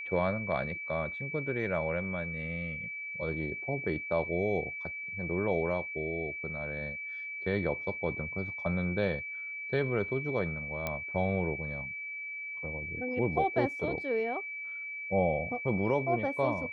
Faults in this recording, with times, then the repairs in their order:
tone 2300 Hz -37 dBFS
10.87 pop -18 dBFS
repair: de-click; notch 2300 Hz, Q 30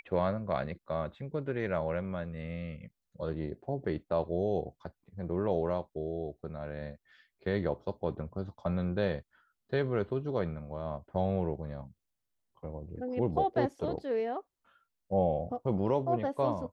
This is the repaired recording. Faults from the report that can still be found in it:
none

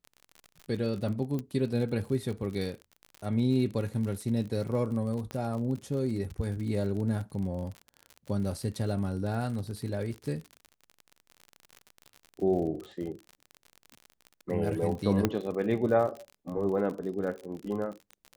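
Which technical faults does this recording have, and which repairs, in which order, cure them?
crackle 50/s -36 dBFS
1.39 pop -22 dBFS
5.31 pop -23 dBFS
15.25 pop -11 dBFS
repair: de-click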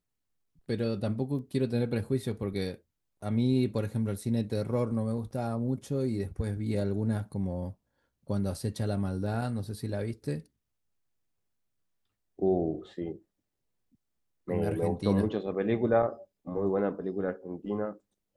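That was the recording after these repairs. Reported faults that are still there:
1.39 pop
5.31 pop

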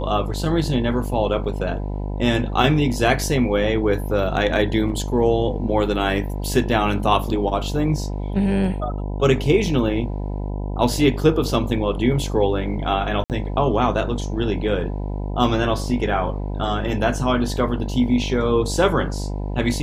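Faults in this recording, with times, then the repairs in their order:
buzz 50 Hz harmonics 20 -26 dBFS
13.24–13.3 gap 58 ms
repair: de-hum 50 Hz, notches 20; interpolate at 13.24, 58 ms

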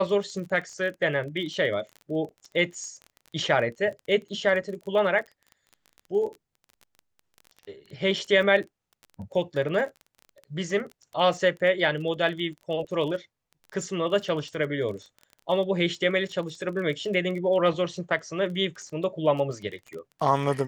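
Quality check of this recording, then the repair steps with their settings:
crackle 24/s -35 dBFS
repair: de-click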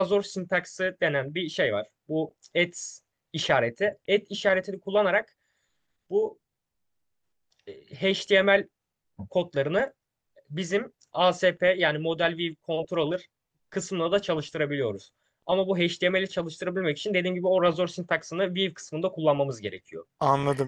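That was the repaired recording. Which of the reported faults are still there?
none

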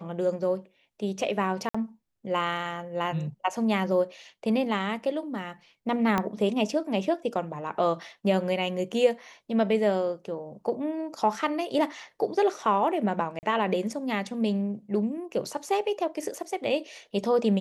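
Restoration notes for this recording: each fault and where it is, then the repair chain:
1.69–1.75 gap 55 ms
6.18 pop -12 dBFS
13.39–13.43 gap 39 ms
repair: de-click; interpolate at 1.69, 55 ms; interpolate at 13.39, 39 ms

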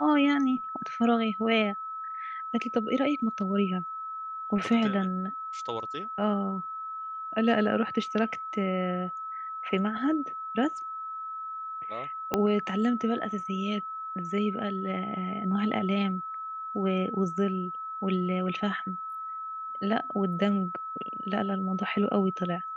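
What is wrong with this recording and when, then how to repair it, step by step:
tone 1300 Hz -34 dBFS
12.34 pop -11 dBFS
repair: de-click; notch 1300 Hz, Q 30

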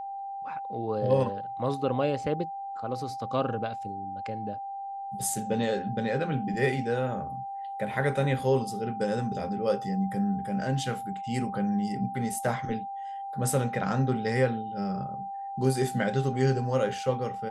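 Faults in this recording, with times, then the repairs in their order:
tone 790 Hz -34 dBFS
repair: notch 790 Hz, Q 30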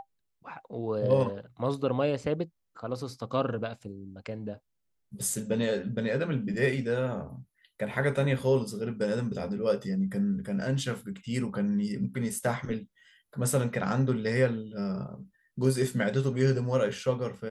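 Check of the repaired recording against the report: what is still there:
none

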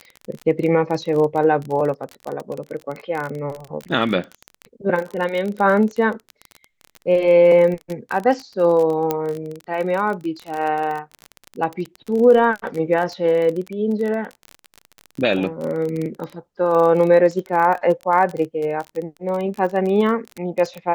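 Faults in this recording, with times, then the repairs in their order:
crackle 28/s -24 dBFS
9.11 pop -7 dBFS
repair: de-click

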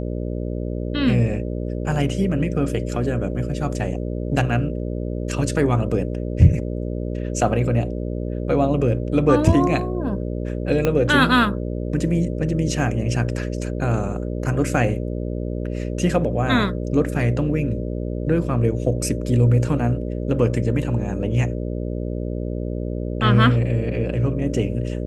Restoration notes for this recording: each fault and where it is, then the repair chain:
buzz 60 Hz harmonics 10 -26 dBFS
10.85 pop -7 dBFS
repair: de-click; de-hum 60 Hz, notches 10

